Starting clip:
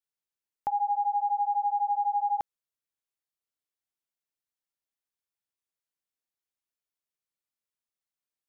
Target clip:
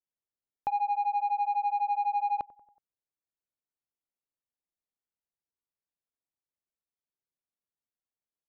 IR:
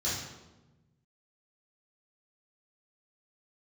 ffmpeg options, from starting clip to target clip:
-af "aecho=1:1:93|186|279|372:0.112|0.0606|0.0327|0.0177,adynamicsmooth=sensitivity=1.5:basefreq=1.1k"

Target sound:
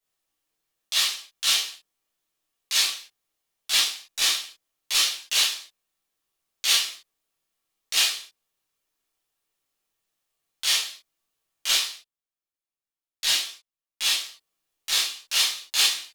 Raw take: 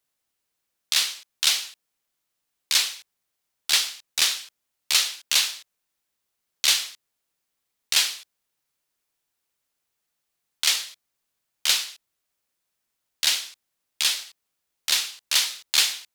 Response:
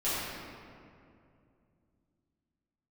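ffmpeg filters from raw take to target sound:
-filter_complex "[0:a]asettb=1/sr,asplit=3[a][b][c];[a]atrim=end=11.734[d];[b]atrim=start=11.73:end=14.19,asetpts=PTS-STARTPTS,afade=t=in:d=0.004:c=qsin,afade=t=out:st=2.456:d=0.004:c=qsin,agate=range=-15dB:threshold=-40dB:ratio=16:detection=peak[e];[c]atrim=start=14.186[f];[d][e]acrossfade=d=0.004:c1=hsin:c2=qsin[g];[g][f]acrossfade=d=0.004:c1=qsin:c2=hsin[h];[1:a]atrim=start_sample=2205,atrim=end_sample=3528[i];[h][i]afir=irnorm=-1:irlink=0,volume=-5.5dB"

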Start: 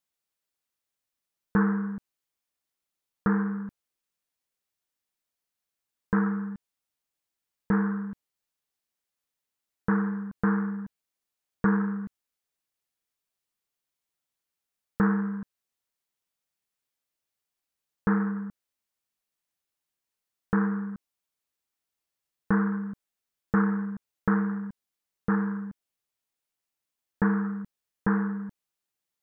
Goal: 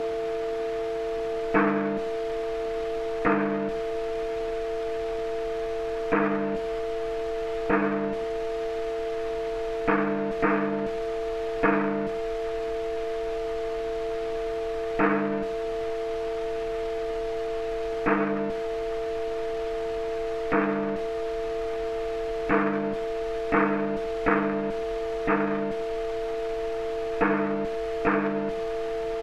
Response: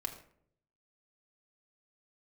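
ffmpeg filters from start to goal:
-filter_complex "[0:a]aeval=exprs='val(0)+0.5*0.0282*sgn(val(0))':c=same,lowpass=1.8k,aecho=1:1:6.6:0.32,aeval=exprs='val(0)+0.0282*sin(2*PI*450*n/s)':c=same,asplit=2[a][b];[1:a]atrim=start_sample=2205,afade=t=out:st=0.17:d=0.01,atrim=end_sample=7938[c];[b][c]afir=irnorm=-1:irlink=0,volume=-2dB[d];[a][d]amix=inputs=2:normalize=0,asplit=3[e][f][g];[f]asetrate=33038,aresample=44100,atempo=1.33484,volume=-13dB[h];[g]asetrate=66075,aresample=44100,atempo=0.66742,volume=-5dB[i];[e][h][i]amix=inputs=3:normalize=0,asubboost=boost=3:cutoff=83,acrossover=split=260[j][k];[j]acompressor=threshold=-36dB:ratio=6[l];[l][k]amix=inputs=2:normalize=0"

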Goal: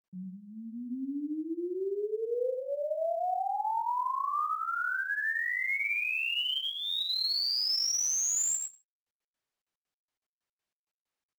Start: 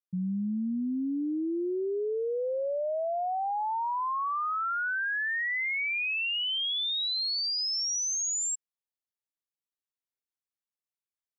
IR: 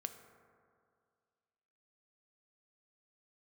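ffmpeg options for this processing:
-filter_complex "[0:a]bass=f=250:g=-12,treble=f=4k:g=3,flanger=delay=19:depth=4.1:speed=1.5,bandreject=f=3.4k:w=15,asplit=2[a][b];[1:a]atrim=start_sample=2205,afade=t=out:st=0.21:d=0.01,atrim=end_sample=9702,adelay=107[c];[b][c]afir=irnorm=-1:irlink=0,volume=-2dB[d];[a][d]amix=inputs=2:normalize=0" -ar 44100 -c:a adpcm_ima_wav

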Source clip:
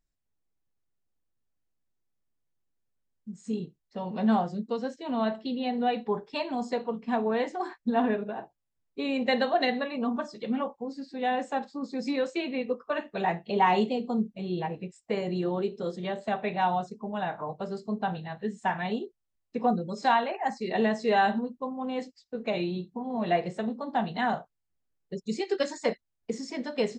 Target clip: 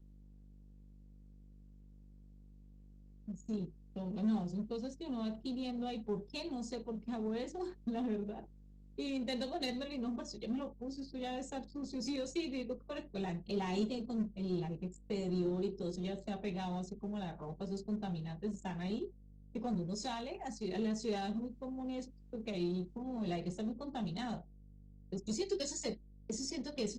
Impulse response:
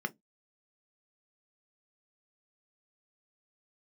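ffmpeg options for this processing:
-filter_complex "[0:a]agate=range=-33dB:threshold=-43dB:ratio=3:detection=peak,aeval=exprs='val(0)+0.00251*(sin(2*PI*50*n/s)+sin(2*PI*2*50*n/s)/2+sin(2*PI*3*50*n/s)/3+sin(2*PI*4*50*n/s)/4+sin(2*PI*5*50*n/s)/5)':c=same,asplit=2[a][b];[b]highshelf=f=6.6k:g=-9[c];[1:a]atrim=start_sample=2205,atrim=end_sample=3528[d];[c][d]afir=irnorm=-1:irlink=0,volume=-11.5dB[e];[a][e]amix=inputs=2:normalize=0,acrossover=split=260|3000[f][g][h];[g]acompressor=threshold=-59dB:ratio=1.5[i];[f][i][h]amix=inputs=3:normalize=0,anlmdn=0.001,asplit=2[j][k];[k]asoftclip=type=hard:threshold=-36dB,volume=-3dB[l];[j][l]amix=inputs=2:normalize=0,equalizer=f=100:t=o:w=0.67:g=-8,equalizer=f=400:t=o:w=0.67:g=8,equalizer=f=6.3k:t=o:w=0.67:g=11,volume=-8.5dB" -ar 48000 -c:a libopus -b:a 20k

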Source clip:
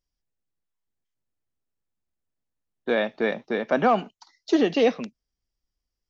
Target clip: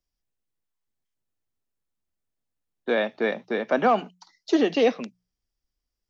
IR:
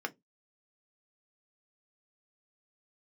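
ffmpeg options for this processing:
-filter_complex "[0:a]bandreject=f=60:t=h:w=6,bandreject=f=120:t=h:w=6,bandreject=f=180:t=h:w=6,acrossover=split=160|880|1800[a][b][c][d];[a]acompressor=threshold=-57dB:ratio=6[e];[e][b][c][d]amix=inputs=4:normalize=0"

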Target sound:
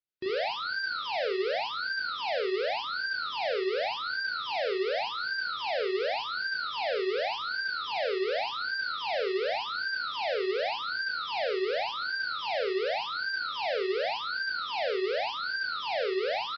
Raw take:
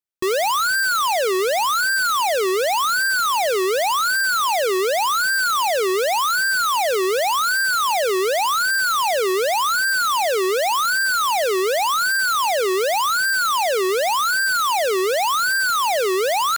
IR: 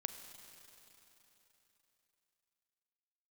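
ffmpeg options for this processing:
-filter_complex "[0:a]highpass=58,equalizer=f=1k:t=o:w=0.84:g=-7,alimiter=limit=-23.5dB:level=0:latency=1,asuperstop=centerf=1100:order=4:qfactor=7.1,asplit=2[a][b];[b]aecho=0:1:23|37|72:0.282|0.631|0.422[c];[a][c]amix=inputs=2:normalize=0,aresample=11025,aresample=44100,volume=-5dB" -ar 24000 -c:a libmp3lame -b:a 40k

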